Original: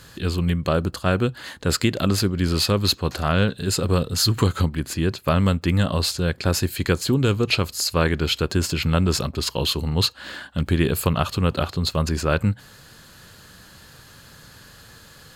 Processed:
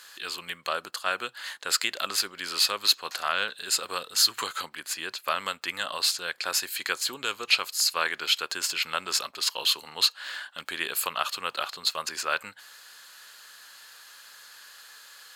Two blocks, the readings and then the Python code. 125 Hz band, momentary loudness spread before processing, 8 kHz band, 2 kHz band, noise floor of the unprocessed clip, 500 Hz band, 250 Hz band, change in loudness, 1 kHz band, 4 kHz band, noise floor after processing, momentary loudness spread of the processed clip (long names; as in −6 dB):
below −35 dB, 4 LU, 0.0 dB, −0.5 dB, −48 dBFS, −14.0 dB, −25.5 dB, −5.0 dB, −3.0 dB, 0.0 dB, −54 dBFS, 23 LU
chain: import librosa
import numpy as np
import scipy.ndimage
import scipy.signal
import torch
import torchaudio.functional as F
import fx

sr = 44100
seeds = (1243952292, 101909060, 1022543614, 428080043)

y = scipy.signal.sosfilt(scipy.signal.butter(2, 1100.0, 'highpass', fs=sr, output='sos'), x)